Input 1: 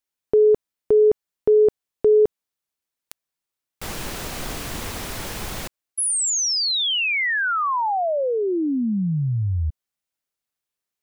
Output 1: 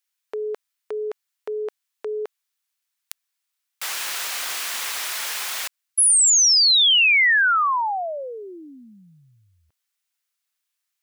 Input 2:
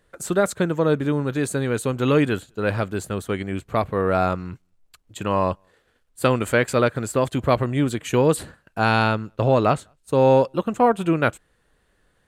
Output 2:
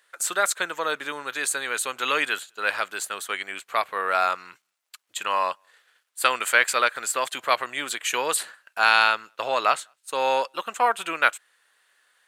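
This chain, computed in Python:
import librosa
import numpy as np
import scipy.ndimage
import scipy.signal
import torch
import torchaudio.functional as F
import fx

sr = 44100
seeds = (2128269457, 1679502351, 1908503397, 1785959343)

y = scipy.signal.sosfilt(scipy.signal.butter(2, 1300.0, 'highpass', fs=sr, output='sos'), x)
y = y * 10.0 ** (6.5 / 20.0)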